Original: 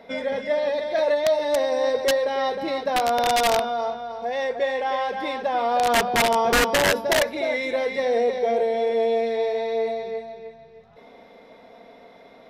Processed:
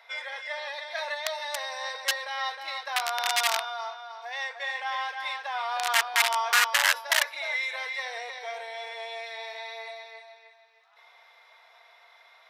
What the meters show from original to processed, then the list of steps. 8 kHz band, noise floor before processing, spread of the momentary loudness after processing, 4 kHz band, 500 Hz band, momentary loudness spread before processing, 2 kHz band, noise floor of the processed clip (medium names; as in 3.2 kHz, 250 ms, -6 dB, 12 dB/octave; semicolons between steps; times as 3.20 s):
0.0 dB, -49 dBFS, 15 LU, 0.0 dB, -18.0 dB, 8 LU, 0.0 dB, -57 dBFS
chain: high-pass 990 Hz 24 dB/octave